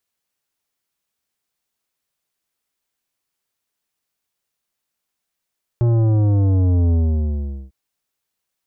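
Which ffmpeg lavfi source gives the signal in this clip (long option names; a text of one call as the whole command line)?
ffmpeg -f lavfi -i "aevalsrc='0.2*clip((1.9-t)/0.79,0,1)*tanh(3.76*sin(2*PI*120*1.9/log(65/120)*(exp(log(65/120)*t/1.9)-1)))/tanh(3.76)':duration=1.9:sample_rate=44100" out.wav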